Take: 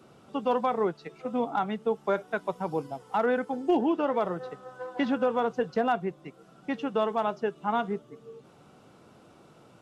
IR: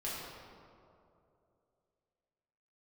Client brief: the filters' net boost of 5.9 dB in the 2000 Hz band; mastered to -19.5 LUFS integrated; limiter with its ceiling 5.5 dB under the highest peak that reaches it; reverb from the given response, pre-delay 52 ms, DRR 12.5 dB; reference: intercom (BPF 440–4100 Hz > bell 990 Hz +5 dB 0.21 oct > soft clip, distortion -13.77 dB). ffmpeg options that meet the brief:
-filter_complex "[0:a]equalizer=f=2k:t=o:g=8.5,alimiter=limit=-18.5dB:level=0:latency=1,asplit=2[a][b];[1:a]atrim=start_sample=2205,adelay=52[c];[b][c]afir=irnorm=-1:irlink=0,volume=-15.5dB[d];[a][d]amix=inputs=2:normalize=0,highpass=440,lowpass=4.1k,equalizer=f=990:t=o:w=0.21:g=5,asoftclip=threshold=-24.5dB,volume=14.5dB"

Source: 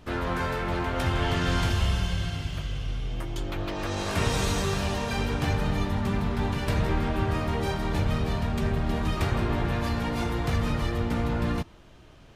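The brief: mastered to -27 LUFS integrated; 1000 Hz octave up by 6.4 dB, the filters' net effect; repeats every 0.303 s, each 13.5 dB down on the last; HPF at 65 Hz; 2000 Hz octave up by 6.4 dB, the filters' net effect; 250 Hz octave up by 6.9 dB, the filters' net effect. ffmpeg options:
-af "highpass=65,equalizer=f=250:t=o:g=8.5,equalizer=f=1k:t=o:g=6,equalizer=f=2k:t=o:g=6,aecho=1:1:303|606:0.211|0.0444,volume=-3dB"

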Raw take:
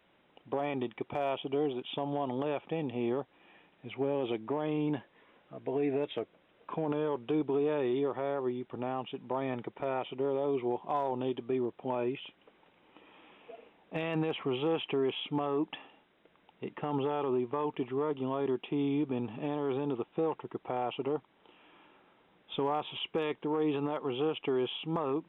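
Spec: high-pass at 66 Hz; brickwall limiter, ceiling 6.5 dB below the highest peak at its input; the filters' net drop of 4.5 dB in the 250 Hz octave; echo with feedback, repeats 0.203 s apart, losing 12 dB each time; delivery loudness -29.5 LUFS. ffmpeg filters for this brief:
-af "highpass=66,equalizer=f=250:t=o:g=-6,alimiter=level_in=4.5dB:limit=-24dB:level=0:latency=1,volume=-4.5dB,aecho=1:1:203|406|609:0.251|0.0628|0.0157,volume=9dB"

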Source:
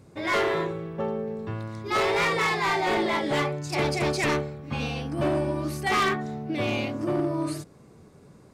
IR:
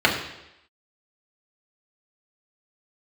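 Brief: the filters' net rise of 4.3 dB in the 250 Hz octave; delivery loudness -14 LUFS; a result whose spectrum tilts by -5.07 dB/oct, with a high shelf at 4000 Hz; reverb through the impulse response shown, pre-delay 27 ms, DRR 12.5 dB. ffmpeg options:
-filter_complex "[0:a]equalizer=f=250:t=o:g=6,highshelf=f=4k:g=5,asplit=2[a][b];[1:a]atrim=start_sample=2205,adelay=27[c];[b][c]afir=irnorm=-1:irlink=0,volume=-33dB[d];[a][d]amix=inputs=2:normalize=0,volume=10.5dB"

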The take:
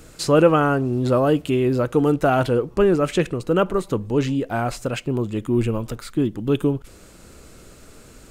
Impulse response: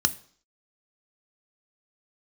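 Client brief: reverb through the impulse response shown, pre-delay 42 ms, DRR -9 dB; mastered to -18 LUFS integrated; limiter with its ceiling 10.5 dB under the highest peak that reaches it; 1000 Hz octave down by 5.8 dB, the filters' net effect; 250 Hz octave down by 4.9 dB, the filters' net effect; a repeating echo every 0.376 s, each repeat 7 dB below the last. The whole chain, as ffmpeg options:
-filter_complex "[0:a]equalizer=f=250:t=o:g=-6,equalizer=f=1k:t=o:g=-8.5,alimiter=limit=-16.5dB:level=0:latency=1,aecho=1:1:376|752|1128|1504|1880:0.447|0.201|0.0905|0.0407|0.0183,asplit=2[a][b];[1:a]atrim=start_sample=2205,adelay=42[c];[b][c]afir=irnorm=-1:irlink=0,volume=-1dB[d];[a][d]amix=inputs=2:normalize=0,volume=-3.5dB"

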